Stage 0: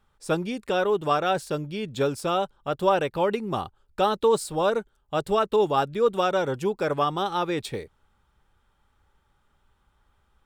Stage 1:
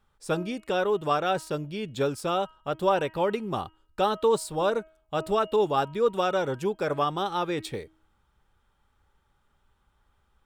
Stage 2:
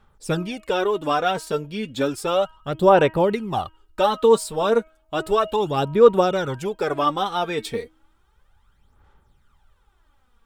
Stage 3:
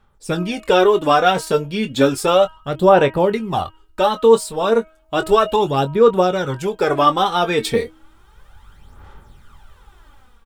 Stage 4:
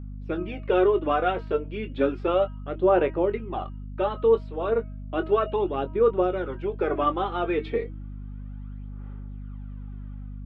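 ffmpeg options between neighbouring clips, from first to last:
ffmpeg -i in.wav -af "bandreject=frequency=317.8:width_type=h:width=4,bandreject=frequency=635.6:width_type=h:width=4,bandreject=frequency=953.4:width_type=h:width=4,bandreject=frequency=1271.2:width_type=h:width=4,bandreject=frequency=1589:width_type=h:width=4,bandreject=frequency=1906.8:width_type=h:width=4,bandreject=frequency=2224.6:width_type=h:width=4,bandreject=frequency=2542.4:width_type=h:width=4,bandreject=frequency=2860.2:width_type=h:width=4,bandreject=frequency=3178:width_type=h:width=4,volume=-2dB" out.wav
ffmpeg -i in.wav -af "aphaser=in_gain=1:out_gain=1:delay=4.5:decay=0.6:speed=0.33:type=sinusoidal,volume=3.5dB" out.wav
ffmpeg -i in.wav -filter_complex "[0:a]asplit=2[link_01][link_02];[link_02]adelay=22,volume=-10dB[link_03];[link_01][link_03]amix=inputs=2:normalize=0,dynaudnorm=framelen=180:gausssize=5:maxgain=15.5dB,volume=-1dB" out.wav
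ffmpeg -i in.wav -af "highpass=300,equalizer=frequency=340:width_type=q:width=4:gain=9,equalizer=frequency=910:width_type=q:width=4:gain=-6,equalizer=frequency=1700:width_type=q:width=4:gain=-4,lowpass=frequency=2600:width=0.5412,lowpass=frequency=2600:width=1.3066,aeval=exprs='val(0)+0.0447*(sin(2*PI*50*n/s)+sin(2*PI*2*50*n/s)/2+sin(2*PI*3*50*n/s)/3+sin(2*PI*4*50*n/s)/4+sin(2*PI*5*50*n/s)/5)':channel_layout=same,volume=-8.5dB" out.wav

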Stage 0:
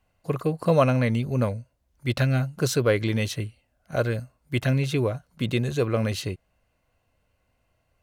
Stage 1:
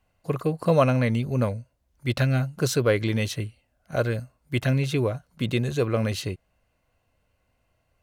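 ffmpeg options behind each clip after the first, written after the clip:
ffmpeg -i in.wav -af anull out.wav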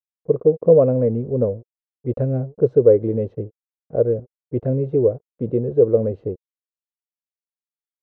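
ffmpeg -i in.wav -af "aeval=exprs='sgn(val(0))*max(abs(val(0))-0.00562,0)':channel_layout=same,lowpass=frequency=470:width_type=q:width=4.9" out.wav

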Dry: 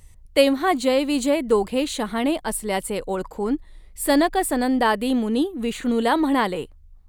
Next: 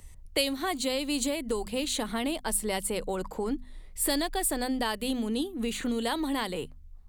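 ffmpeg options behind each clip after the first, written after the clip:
ffmpeg -i in.wav -filter_complex "[0:a]bandreject=frequency=50:width_type=h:width=6,bandreject=frequency=100:width_type=h:width=6,bandreject=frequency=150:width_type=h:width=6,bandreject=frequency=200:width_type=h:width=6,bandreject=frequency=250:width_type=h:width=6,acrossover=split=120|3000[link_01][link_02][link_03];[link_02]acompressor=threshold=-29dB:ratio=6[link_04];[link_01][link_04][link_03]amix=inputs=3:normalize=0" out.wav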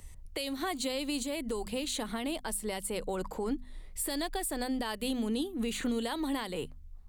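ffmpeg -i in.wav -af "alimiter=limit=-24dB:level=0:latency=1:release=242" out.wav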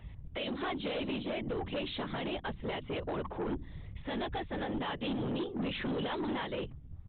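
ffmpeg -i in.wav -af "afftfilt=real='hypot(re,im)*cos(2*PI*random(0))':imag='hypot(re,im)*sin(2*PI*random(1))':win_size=512:overlap=0.75,aresample=8000,asoftclip=type=tanh:threshold=-39dB,aresample=44100,volume=8.5dB" out.wav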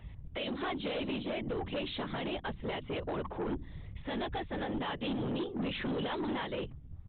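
ffmpeg -i in.wav -af anull out.wav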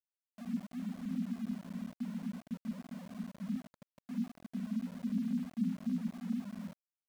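ffmpeg -i in.wav -af "asuperpass=centerf=210:order=20:qfactor=2.4,aeval=exprs='val(0)*gte(abs(val(0)),0.00237)':channel_layout=same,volume=5dB" out.wav

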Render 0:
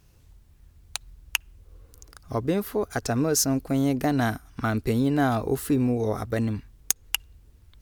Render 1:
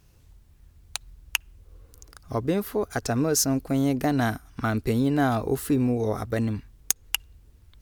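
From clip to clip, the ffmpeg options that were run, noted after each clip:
ffmpeg -i in.wav -af anull out.wav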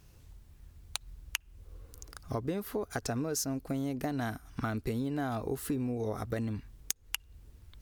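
ffmpeg -i in.wav -af "acompressor=threshold=-32dB:ratio=4" out.wav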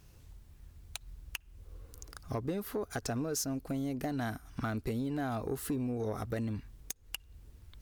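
ffmpeg -i in.wav -af "asoftclip=type=tanh:threshold=-25dB" out.wav

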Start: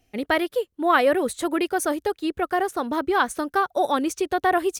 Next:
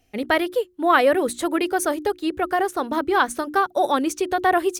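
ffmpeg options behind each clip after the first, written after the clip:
ffmpeg -i in.wav -af "bandreject=frequency=60:width_type=h:width=6,bandreject=frequency=120:width_type=h:width=6,bandreject=frequency=180:width_type=h:width=6,bandreject=frequency=240:width_type=h:width=6,bandreject=frequency=300:width_type=h:width=6,bandreject=frequency=360:width_type=h:width=6,volume=2dB" out.wav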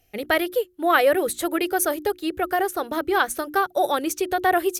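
ffmpeg -i in.wav -af "equalizer=frequency=250:width_type=o:width=0.33:gain=-12,equalizer=frequency=1000:width_type=o:width=0.33:gain=-7,equalizer=frequency=12500:width_type=o:width=0.33:gain=12" out.wav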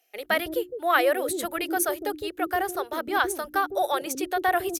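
ffmpeg -i in.wav -filter_complex "[0:a]acrossover=split=390[link_01][link_02];[link_01]adelay=160[link_03];[link_03][link_02]amix=inputs=2:normalize=0,volume=-2.5dB" out.wav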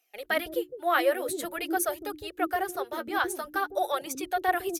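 ffmpeg -i in.wav -af "flanger=delay=0.8:depth=8.3:regen=28:speed=0.48:shape=sinusoidal" out.wav

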